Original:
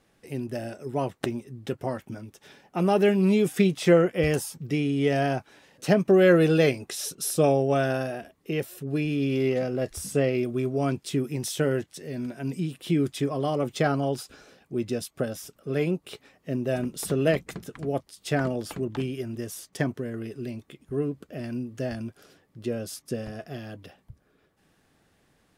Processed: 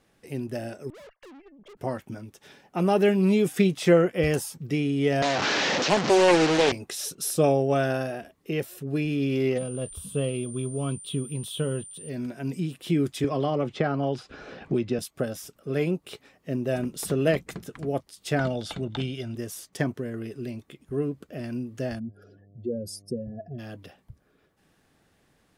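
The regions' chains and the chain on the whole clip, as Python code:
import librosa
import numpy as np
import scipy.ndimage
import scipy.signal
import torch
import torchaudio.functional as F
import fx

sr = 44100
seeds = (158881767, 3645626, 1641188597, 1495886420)

y = fx.chain(x, sr, fx.sine_speech(),
    fx.comb(ms=1.8, depth=0.44),
    fx.tube_stage(drive_db=46.0, bias=0.6), at=(0.9, 1.77))
y = fx.chain(y, sr, fx.delta_mod(bps=32000, step_db=-18.0),
    fx.highpass(hz=210.0, slope=12),
    fx.doppler_dist(depth_ms=0.53), at=(5.22, 6.72))
y = fx.curve_eq(y, sr, hz=(200.0, 330.0, 480.0, 750.0, 1100.0, 2000.0, 3300.0, 5500.0, 9900.0), db=(0, -8, -3, -11, -1, -16, 6, -20, -7), at=(9.57, 12.08), fade=0.02)
y = fx.dmg_tone(y, sr, hz=9100.0, level_db=-41.0, at=(9.57, 12.08), fade=0.02)
y = fx.chain(y, sr, fx.lowpass(hz=3900.0, slope=12),
    fx.band_squash(depth_pct=100), at=(13.24, 14.99))
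y = fx.chain(y, sr, fx.lowpass(hz=8200.0, slope=12),
    fx.peak_eq(hz=3600.0, db=13.0, octaves=0.39),
    fx.comb(ms=1.4, depth=0.37), at=(18.39, 19.35))
y = fx.spec_expand(y, sr, power=2.5, at=(21.98, 23.58), fade=0.02)
y = fx.dmg_buzz(y, sr, base_hz=100.0, harmonics=7, level_db=-56.0, tilt_db=-7, odd_only=False, at=(21.98, 23.58), fade=0.02)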